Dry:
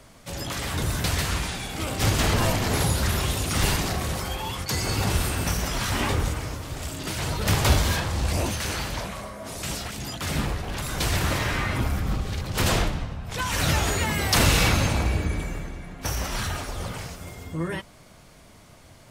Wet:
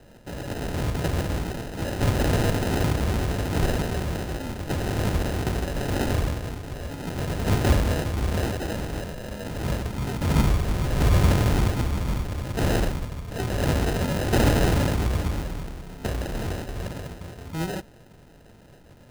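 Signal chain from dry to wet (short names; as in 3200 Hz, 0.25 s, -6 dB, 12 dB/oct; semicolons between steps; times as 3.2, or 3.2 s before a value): 9.28–11.7 low shelf 330 Hz +8.5 dB; sample-and-hold 39×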